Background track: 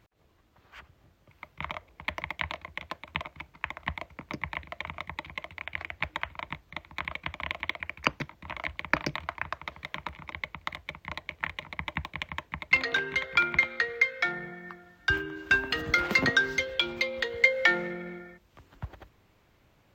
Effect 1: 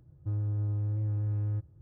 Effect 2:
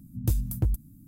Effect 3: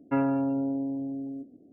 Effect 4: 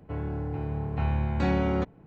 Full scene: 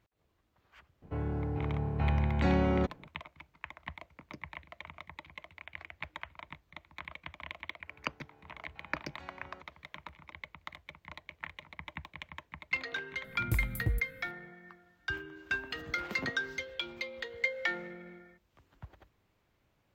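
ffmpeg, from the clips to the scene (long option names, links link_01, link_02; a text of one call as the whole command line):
ffmpeg -i bed.wav -i cue0.wav -i cue1.wav -i cue2.wav -i cue3.wav -filter_complex "[4:a]asplit=2[link_01][link_02];[0:a]volume=-10dB[link_03];[link_02]highpass=frequency=1200:poles=1[link_04];[2:a]equalizer=frequency=6000:width_type=o:width=0.34:gain=-6[link_05];[link_01]atrim=end=2.06,asetpts=PTS-STARTPTS,volume=-2dB,afade=type=in:duration=0.004:curve=hsin,afade=type=out:start_time=2.056:duration=0.004:curve=hsin,adelay=1020[link_06];[link_04]atrim=end=2.06,asetpts=PTS-STARTPTS,volume=-17.5dB,afade=type=in:duration=0.004:curve=hsin,afade=type=out:start_time=2.056:duration=0.004:curve=hsin,adelay=343098S[link_07];[link_05]atrim=end=1.07,asetpts=PTS-STARTPTS,volume=-6dB,afade=type=in:duration=0.004:curve=hsin,afade=type=out:start_time=1.066:duration=0.004:curve=hsin,adelay=13240[link_08];[link_03][link_06][link_07][link_08]amix=inputs=4:normalize=0" out.wav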